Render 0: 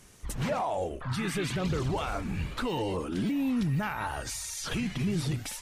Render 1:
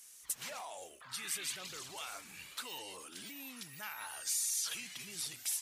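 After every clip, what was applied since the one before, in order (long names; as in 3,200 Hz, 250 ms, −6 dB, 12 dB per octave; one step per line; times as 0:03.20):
first difference
level +3 dB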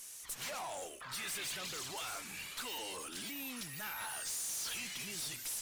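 tube saturation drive 46 dB, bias 0.35
level +8 dB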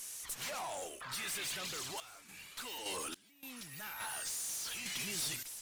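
sample-and-hold tremolo 3.5 Hz, depth 95%
level +4 dB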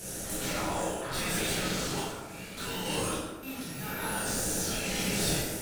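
in parallel at −4 dB: decimation without filtering 41×
on the sum: convolution reverb RT60 1.2 s, pre-delay 13 ms, DRR −7.5 dB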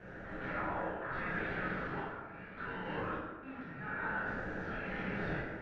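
transistor ladder low-pass 1,900 Hz, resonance 55%
level +3 dB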